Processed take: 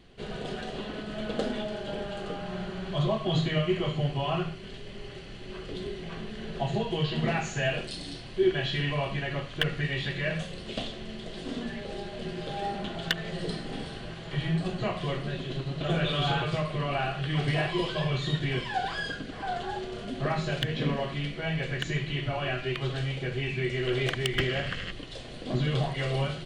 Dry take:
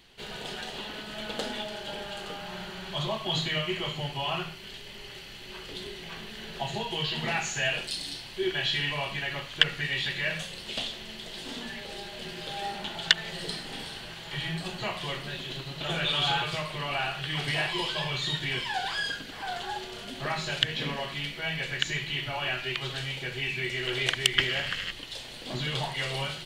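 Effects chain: resampled via 22.05 kHz; in parallel at -5.5 dB: wavefolder -17.5 dBFS; on the sum: Butterworth band-stop 890 Hz, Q 6.3; tilt shelf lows +7.5 dB, about 1.2 kHz; trim -3.5 dB

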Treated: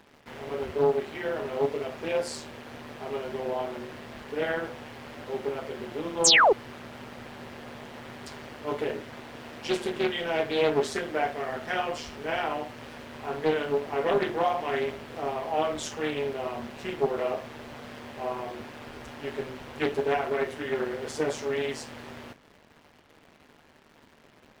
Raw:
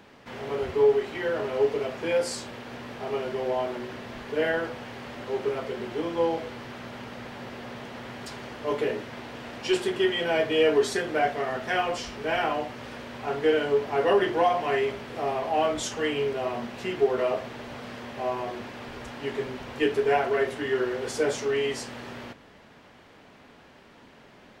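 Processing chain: AM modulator 150 Hz, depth 40%; in parallel at -5 dB: bit crusher 8-bit; on the sum: painted sound fall, 6.24–6.53 s, 350–8800 Hz -13 dBFS; loudspeaker Doppler distortion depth 0.34 ms; trim -4.5 dB

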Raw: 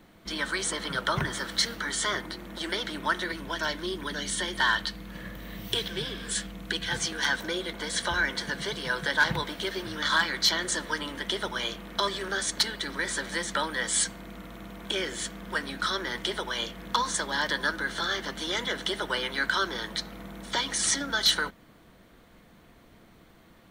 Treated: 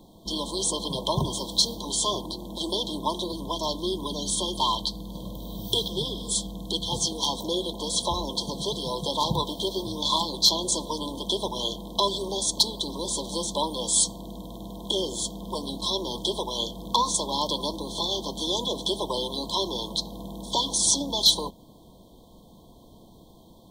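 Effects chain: brick-wall FIR band-stop 1.1–3.1 kHz; trim +4.5 dB

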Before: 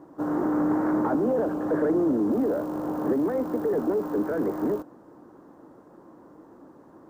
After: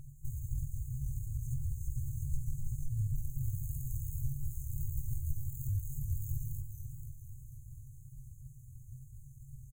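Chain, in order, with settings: comb filter that takes the minimum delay 7.1 ms; dynamic bell 520 Hz, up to -6 dB, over -41 dBFS, Q 1.4; compression 16:1, threshold -33 dBFS, peak gain reduction 12 dB; feedback delay 78 ms, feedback 48%, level -23 dB; tempo 0.73×; FFT band-reject 140–6300 Hz; modulated delay 487 ms, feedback 49%, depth 96 cents, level -8 dB; trim +13.5 dB

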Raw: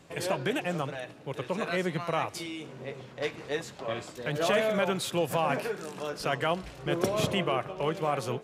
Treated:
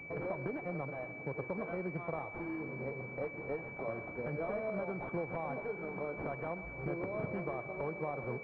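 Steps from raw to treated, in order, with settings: compression 4:1, threshold -38 dBFS, peak gain reduction 14 dB; integer overflow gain 27.5 dB; on a send: thinning echo 128 ms, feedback 75%, high-pass 420 Hz, level -13.5 dB; on the sum: class-D stage that switches slowly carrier 2.3 kHz; trim +2 dB

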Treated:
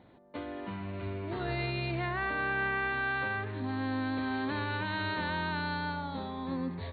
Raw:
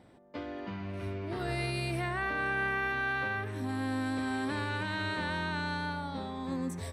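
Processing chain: brick-wall FIR low-pass 4.5 kHz; peaking EQ 970 Hz +3.5 dB 0.21 oct

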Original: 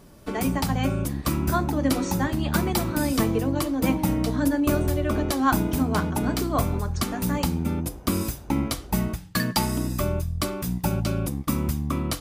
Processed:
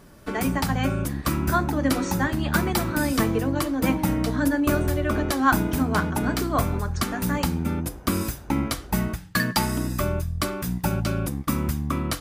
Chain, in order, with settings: peaking EQ 1.6 kHz +6 dB 0.8 oct

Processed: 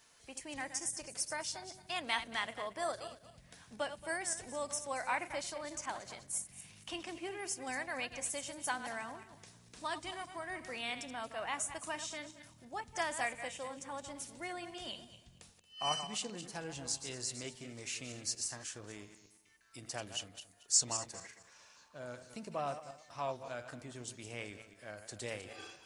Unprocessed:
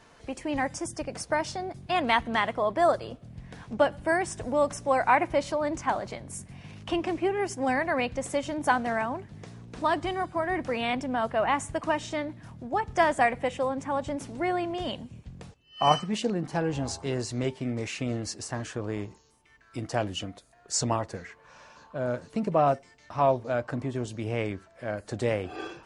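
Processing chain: backward echo that repeats 114 ms, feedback 47%, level -10 dB; pre-emphasis filter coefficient 0.9; trim +1.5 dB

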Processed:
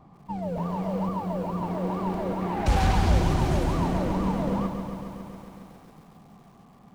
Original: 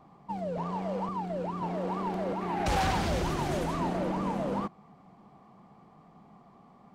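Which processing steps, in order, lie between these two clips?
bass shelf 160 Hz +12 dB; bit-crushed delay 137 ms, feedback 80%, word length 9-bit, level -8.5 dB

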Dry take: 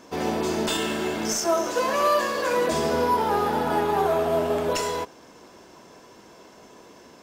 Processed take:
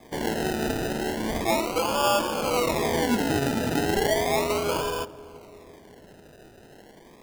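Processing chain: decimation with a swept rate 31×, swing 60% 0.35 Hz; filtered feedback delay 342 ms, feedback 63%, low-pass 870 Hz, level -18 dB; trim -1.5 dB

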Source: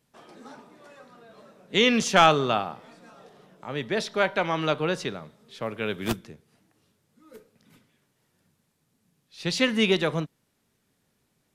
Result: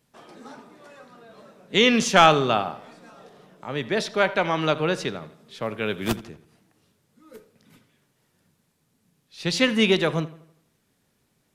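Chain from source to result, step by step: filtered feedback delay 82 ms, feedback 46%, low-pass 4.9 kHz, level -17.5 dB; trim +2.5 dB

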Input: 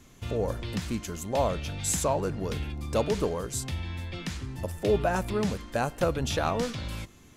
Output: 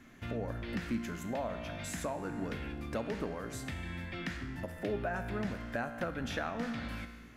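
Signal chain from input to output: high-order bell 1 kHz +9.5 dB; feedback comb 58 Hz, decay 1.3 s, harmonics all, mix 70%; compression 2:1, threshold -41 dBFS, peak gain reduction 10.5 dB; graphic EQ 250/1000/2000/8000 Hz +10/-8/+11/-5 dB; trim +1 dB

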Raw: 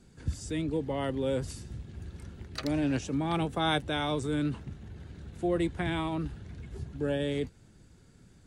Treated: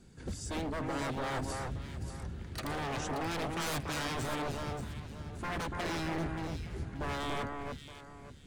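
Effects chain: wavefolder -31.5 dBFS; echo whose repeats swap between lows and highs 290 ms, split 2.1 kHz, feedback 51%, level -3 dB

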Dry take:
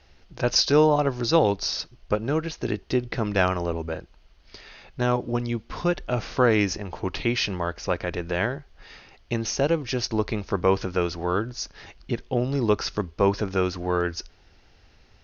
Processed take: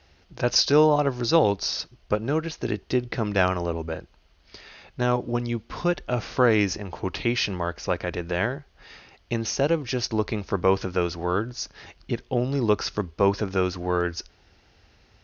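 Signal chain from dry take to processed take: high-pass 43 Hz

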